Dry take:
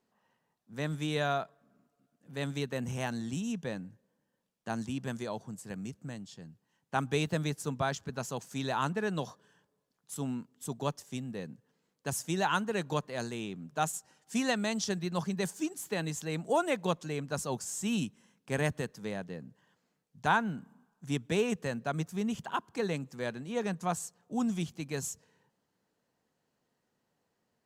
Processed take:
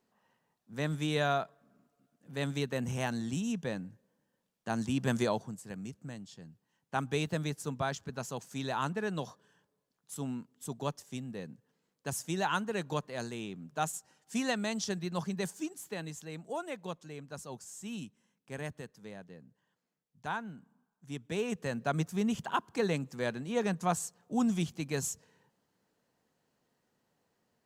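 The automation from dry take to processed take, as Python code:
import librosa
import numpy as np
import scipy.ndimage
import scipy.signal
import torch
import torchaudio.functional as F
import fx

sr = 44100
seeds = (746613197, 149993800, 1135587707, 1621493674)

y = fx.gain(x, sr, db=fx.line((4.68, 1.0), (5.24, 8.5), (5.6, -2.0), (15.39, -2.0), (16.51, -9.5), (21.05, -9.5), (21.88, 2.0)))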